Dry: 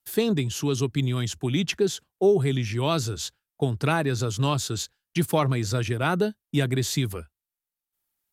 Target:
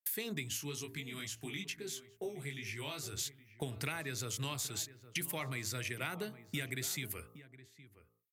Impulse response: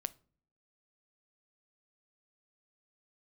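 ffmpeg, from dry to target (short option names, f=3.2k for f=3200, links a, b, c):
-filter_complex "[0:a]aemphasis=mode=production:type=75fm,bandreject=f=56.73:t=h:w=4,bandreject=f=113.46:t=h:w=4,bandreject=f=170.19:t=h:w=4,bandreject=f=226.92:t=h:w=4,bandreject=f=283.65:t=h:w=4,bandreject=f=340.38:t=h:w=4,bandreject=f=397.11:t=h:w=4,bandreject=f=453.84:t=h:w=4,bandreject=f=510.57:t=h:w=4,bandreject=f=567.3:t=h:w=4,bandreject=f=624.03:t=h:w=4,bandreject=f=680.76:t=h:w=4,bandreject=f=737.49:t=h:w=4,bandreject=f=794.22:t=h:w=4,bandreject=f=850.95:t=h:w=4,bandreject=f=907.68:t=h:w=4,bandreject=f=964.41:t=h:w=4,bandreject=f=1.02114k:t=h:w=4,bandreject=f=1.07787k:t=h:w=4,bandreject=f=1.1346k:t=h:w=4,bandreject=f=1.19133k:t=h:w=4,bandreject=f=1.24806k:t=h:w=4,bandreject=f=1.30479k:t=h:w=4,agate=range=-33dB:threshold=-48dB:ratio=3:detection=peak,equalizer=f=2.1k:t=o:w=0.65:g=13.5,acompressor=threshold=-33dB:ratio=5,asplit=3[a][b][c];[a]afade=t=out:st=0.56:d=0.02[d];[b]flanger=delay=18:depth=2.8:speed=2.2,afade=t=in:st=0.56:d=0.02,afade=t=out:st=3.05:d=0.02[e];[c]afade=t=in:st=3.05:d=0.02[f];[d][e][f]amix=inputs=3:normalize=0,asplit=2[g][h];[h]adelay=816.3,volume=-15dB,highshelf=f=4k:g=-18.4[i];[g][i]amix=inputs=2:normalize=0,volume=-4.5dB"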